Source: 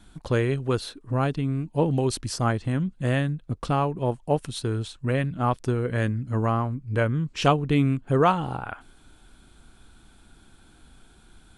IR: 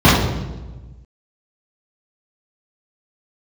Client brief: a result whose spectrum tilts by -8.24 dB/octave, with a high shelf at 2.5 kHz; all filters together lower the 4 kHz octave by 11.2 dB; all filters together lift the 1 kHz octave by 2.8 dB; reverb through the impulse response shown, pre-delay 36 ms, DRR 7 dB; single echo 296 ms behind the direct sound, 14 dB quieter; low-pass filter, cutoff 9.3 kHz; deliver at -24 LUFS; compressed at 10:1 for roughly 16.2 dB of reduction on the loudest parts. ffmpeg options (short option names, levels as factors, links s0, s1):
-filter_complex "[0:a]lowpass=9300,equalizer=f=1000:t=o:g=5.5,highshelf=f=2500:g=-8,equalizer=f=4000:t=o:g=-8.5,acompressor=threshold=0.0355:ratio=10,aecho=1:1:296:0.2,asplit=2[s0][s1];[1:a]atrim=start_sample=2205,adelay=36[s2];[s1][s2]afir=irnorm=-1:irlink=0,volume=0.0158[s3];[s0][s3]amix=inputs=2:normalize=0,volume=1.68"